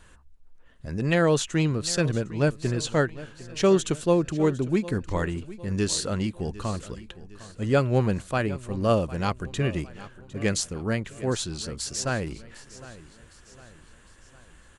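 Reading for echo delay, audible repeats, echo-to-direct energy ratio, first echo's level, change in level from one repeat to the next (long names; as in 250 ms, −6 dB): 756 ms, 3, −16.5 dB, −17.5 dB, −6.5 dB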